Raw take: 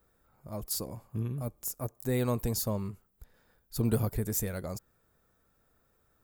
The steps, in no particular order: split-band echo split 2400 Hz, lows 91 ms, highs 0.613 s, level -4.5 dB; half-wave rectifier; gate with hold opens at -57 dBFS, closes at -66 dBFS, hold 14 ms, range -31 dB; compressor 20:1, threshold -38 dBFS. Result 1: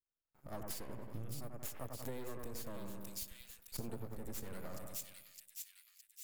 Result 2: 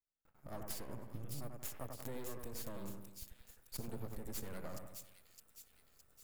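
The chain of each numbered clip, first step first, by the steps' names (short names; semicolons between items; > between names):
half-wave rectifier > gate with hold > split-band echo > compressor; compressor > half-wave rectifier > split-band echo > gate with hold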